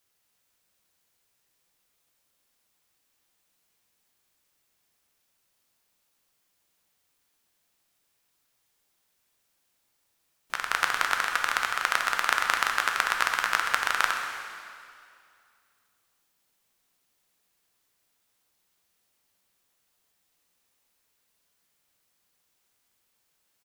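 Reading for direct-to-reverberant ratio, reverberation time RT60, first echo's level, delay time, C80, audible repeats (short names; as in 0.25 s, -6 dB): 2.0 dB, 2.3 s, -14.0 dB, 0.129 s, 4.5 dB, 1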